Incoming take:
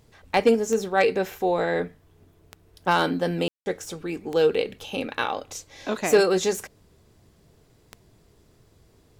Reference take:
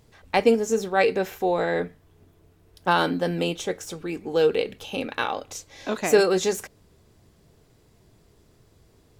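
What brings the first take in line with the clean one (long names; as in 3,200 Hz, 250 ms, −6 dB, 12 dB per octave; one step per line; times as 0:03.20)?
clipped peaks rebuilt −9.5 dBFS
click removal
ambience match 0:03.48–0:03.66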